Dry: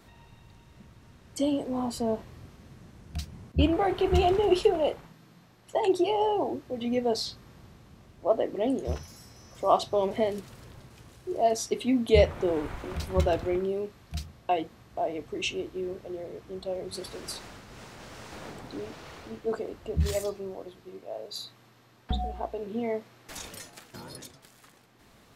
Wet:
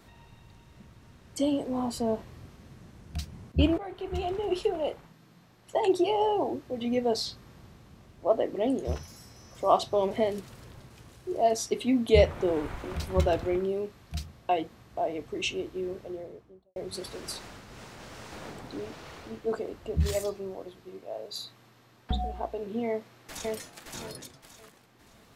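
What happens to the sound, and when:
0:03.78–0:05.77: fade in linear, from −15 dB
0:15.99–0:16.76: fade out and dull
0:22.87–0:23.54: delay throw 570 ms, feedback 25%, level −2 dB

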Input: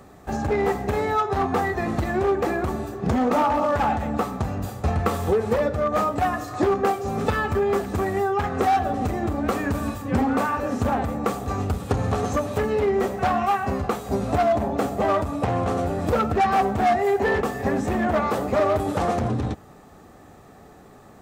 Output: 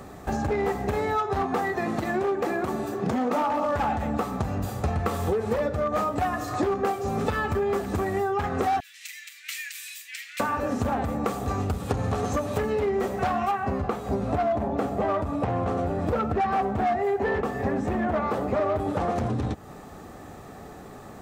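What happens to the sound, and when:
0:01.43–0:03.66: high-pass filter 150 Hz
0:08.80–0:10.40: Butterworth high-pass 2,000 Hz 48 dB per octave
0:13.51–0:19.16: high-shelf EQ 3,800 Hz −10.5 dB
whole clip: downward compressor 2.5 to 1, threshold −32 dBFS; level +5 dB

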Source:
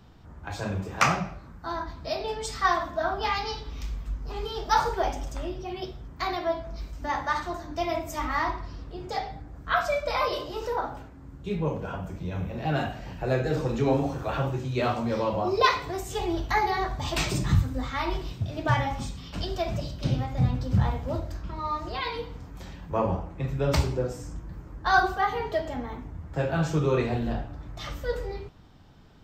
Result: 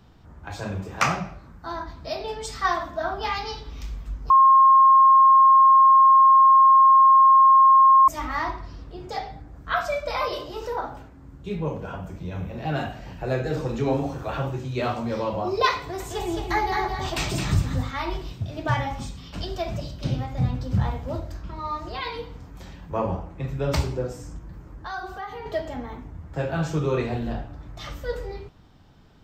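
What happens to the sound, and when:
0:04.30–0:08.08: beep over 1,070 Hz −10.5 dBFS
0:15.78–0:17.91: repeating echo 216 ms, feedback 21%, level −5 dB
0:24.38–0:25.46: downward compressor 2.5 to 1, threshold −35 dBFS

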